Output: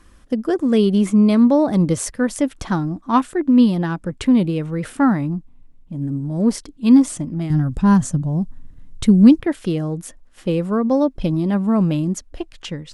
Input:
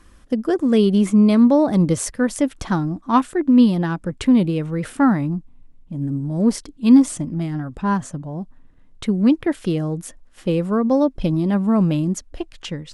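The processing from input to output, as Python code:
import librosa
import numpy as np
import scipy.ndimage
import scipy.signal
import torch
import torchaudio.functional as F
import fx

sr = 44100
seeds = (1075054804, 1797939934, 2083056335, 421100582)

y = fx.bass_treble(x, sr, bass_db=12, treble_db=9, at=(7.5, 9.4))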